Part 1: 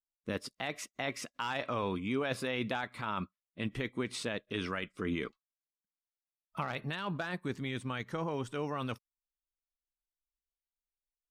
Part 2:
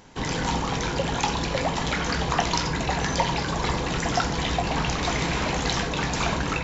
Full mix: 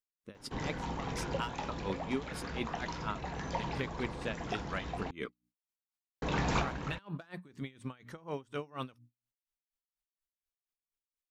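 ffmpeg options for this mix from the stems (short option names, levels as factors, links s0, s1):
-filter_complex "[0:a]bandreject=f=60:t=h:w=6,bandreject=f=120:t=h:w=6,bandreject=f=180:t=h:w=6,bandreject=f=240:t=h:w=6,bandreject=f=300:t=h:w=6,aeval=exprs='val(0)*pow(10,-25*(0.5-0.5*cos(2*PI*4.2*n/s))/20)':c=same,volume=1.12,asplit=2[s0][s1];[1:a]highshelf=f=3000:g=-10.5,adelay=350,volume=1.06,asplit=3[s2][s3][s4];[s2]atrim=end=5.11,asetpts=PTS-STARTPTS,afade=t=out:st=5.106:d=0.004:c=hsin[s5];[s3]atrim=start=5.11:end=6.22,asetpts=PTS-STARTPTS,volume=0[s6];[s4]atrim=start=6.22,asetpts=PTS-STARTPTS,afade=t=in:d=0.004:c=hsin[s7];[s5][s6][s7]concat=n=3:v=0:a=1[s8];[s1]apad=whole_len=308246[s9];[s8][s9]sidechaincompress=threshold=0.00251:ratio=3:attack=21:release=1330[s10];[s0][s10]amix=inputs=2:normalize=0"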